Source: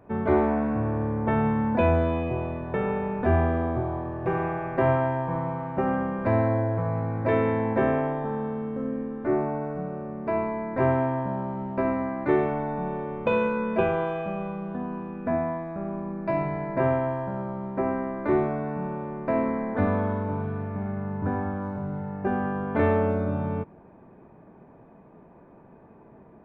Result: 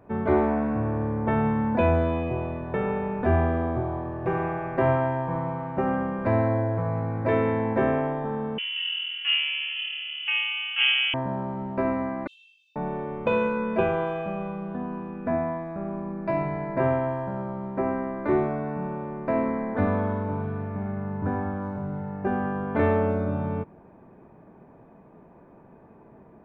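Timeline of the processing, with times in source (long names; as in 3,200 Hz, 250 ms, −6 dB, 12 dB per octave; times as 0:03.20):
0:08.58–0:11.14: voice inversion scrambler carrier 3,200 Hz
0:12.27–0:12.76: linear-phase brick-wall high-pass 2,600 Hz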